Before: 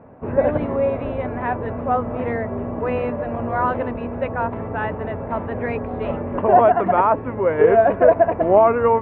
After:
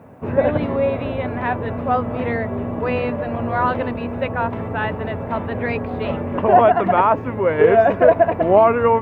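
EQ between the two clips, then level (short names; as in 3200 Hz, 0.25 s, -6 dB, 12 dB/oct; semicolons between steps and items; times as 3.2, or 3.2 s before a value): HPF 71 Hz; tone controls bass +4 dB, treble +14 dB; high shelf 2600 Hz +9.5 dB; 0.0 dB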